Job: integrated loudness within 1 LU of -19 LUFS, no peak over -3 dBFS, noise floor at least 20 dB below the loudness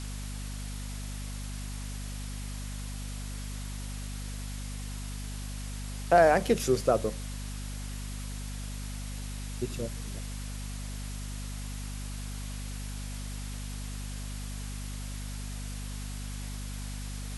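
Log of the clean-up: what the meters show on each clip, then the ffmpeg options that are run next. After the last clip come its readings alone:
hum 50 Hz; harmonics up to 250 Hz; hum level -35 dBFS; noise floor -37 dBFS; noise floor target -55 dBFS; loudness -34.5 LUFS; peak -9.0 dBFS; loudness target -19.0 LUFS
-> -af "bandreject=f=50:t=h:w=4,bandreject=f=100:t=h:w=4,bandreject=f=150:t=h:w=4,bandreject=f=200:t=h:w=4,bandreject=f=250:t=h:w=4"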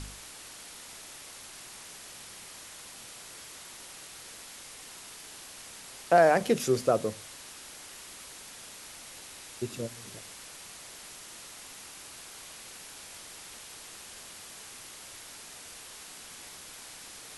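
hum none; noise floor -47 dBFS; noise floor target -56 dBFS
-> -af "afftdn=nr=9:nf=-47"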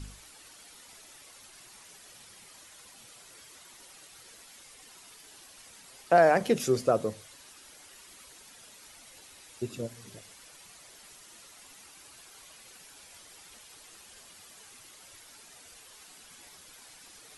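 noise floor -53 dBFS; loudness -26.5 LUFS; peak -9.0 dBFS; loudness target -19.0 LUFS
-> -af "volume=7.5dB,alimiter=limit=-3dB:level=0:latency=1"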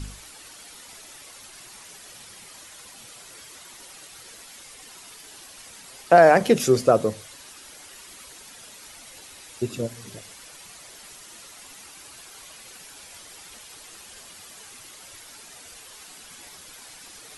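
loudness -19.5 LUFS; peak -3.0 dBFS; noise floor -46 dBFS

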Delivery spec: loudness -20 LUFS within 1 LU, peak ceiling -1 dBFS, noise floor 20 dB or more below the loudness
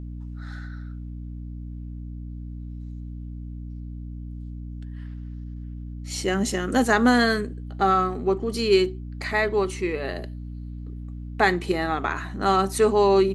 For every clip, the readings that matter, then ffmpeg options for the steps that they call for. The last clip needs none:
hum 60 Hz; harmonics up to 300 Hz; hum level -33 dBFS; loudness -23.0 LUFS; peak -4.5 dBFS; loudness target -20.0 LUFS
-> -af "bandreject=f=60:t=h:w=4,bandreject=f=120:t=h:w=4,bandreject=f=180:t=h:w=4,bandreject=f=240:t=h:w=4,bandreject=f=300:t=h:w=4"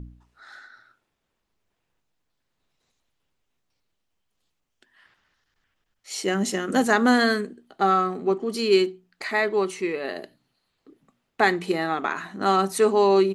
hum none; loudness -23.0 LUFS; peak -4.5 dBFS; loudness target -20.0 LUFS
-> -af "volume=3dB"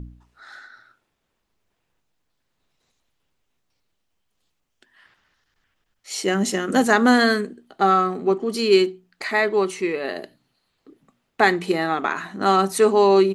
loudness -20.0 LUFS; peak -1.5 dBFS; noise floor -75 dBFS

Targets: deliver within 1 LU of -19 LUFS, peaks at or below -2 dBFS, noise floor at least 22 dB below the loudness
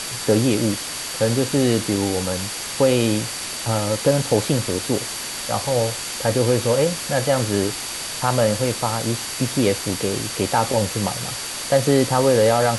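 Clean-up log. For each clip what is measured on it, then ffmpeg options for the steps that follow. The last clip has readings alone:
steady tone 4600 Hz; tone level -36 dBFS; noise floor -30 dBFS; noise floor target -43 dBFS; loudness -20.5 LUFS; peak -4.0 dBFS; loudness target -19.0 LUFS
-> -af "bandreject=f=4.6k:w=30"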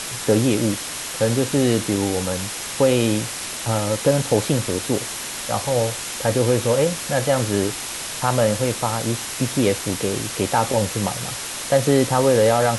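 steady tone none; noise floor -30 dBFS; noise floor target -43 dBFS
-> -af "afftdn=nr=13:nf=-30"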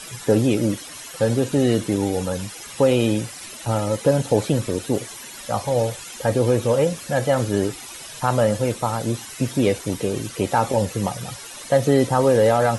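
noise floor -38 dBFS; noise floor target -44 dBFS
-> -af "afftdn=nr=6:nf=-38"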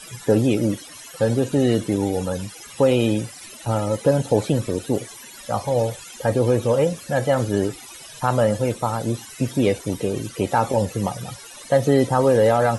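noise floor -41 dBFS; noise floor target -44 dBFS
-> -af "afftdn=nr=6:nf=-41"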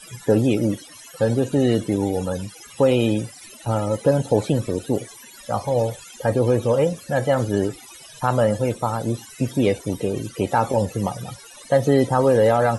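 noise floor -44 dBFS; loudness -21.5 LUFS; peak -5.5 dBFS; loudness target -19.0 LUFS
-> -af "volume=2.5dB"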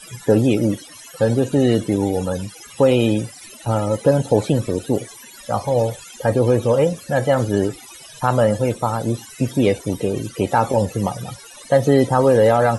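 loudness -19.0 LUFS; peak -3.0 dBFS; noise floor -41 dBFS

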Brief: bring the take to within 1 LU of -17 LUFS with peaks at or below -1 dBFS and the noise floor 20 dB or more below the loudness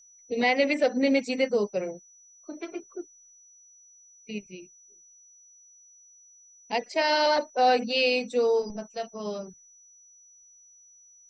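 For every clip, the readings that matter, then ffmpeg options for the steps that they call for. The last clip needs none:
steady tone 5900 Hz; tone level -53 dBFS; loudness -26.0 LUFS; peak -11.5 dBFS; loudness target -17.0 LUFS
-> -af "bandreject=f=5.9k:w=30"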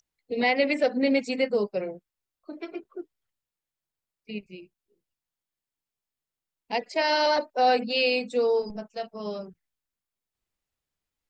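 steady tone none; loudness -25.5 LUFS; peak -11.5 dBFS; loudness target -17.0 LUFS
-> -af "volume=8.5dB"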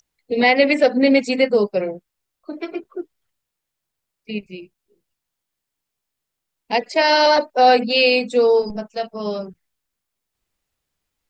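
loudness -17.0 LUFS; peak -3.0 dBFS; noise floor -81 dBFS

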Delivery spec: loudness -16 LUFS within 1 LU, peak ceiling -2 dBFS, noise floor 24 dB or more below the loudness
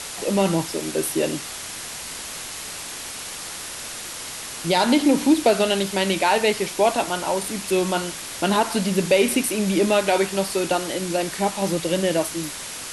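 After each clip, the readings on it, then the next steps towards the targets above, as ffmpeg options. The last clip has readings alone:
noise floor -34 dBFS; noise floor target -47 dBFS; loudness -22.5 LUFS; peak -5.5 dBFS; loudness target -16.0 LUFS
-> -af "afftdn=nr=13:nf=-34"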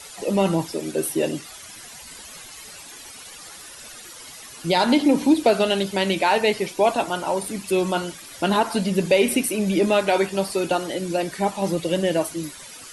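noise floor -41 dBFS; noise floor target -46 dBFS
-> -af "afftdn=nr=6:nf=-41"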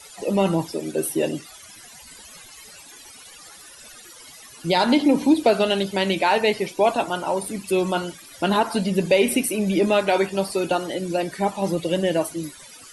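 noise floor -45 dBFS; noise floor target -46 dBFS
-> -af "afftdn=nr=6:nf=-45"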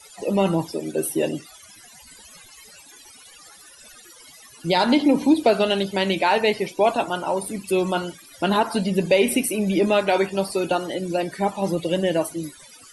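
noise floor -48 dBFS; loudness -22.0 LUFS; peak -6.0 dBFS; loudness target -16.0 LUFS
-> -af "volume=6dB,alimiter=limit=-2dB:level=0:latency=1"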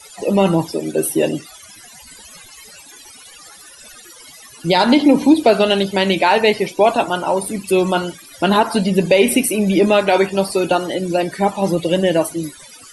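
loudness -16.0 LUFS; peak -2.0 dBFS; noise floor -42 dBFS

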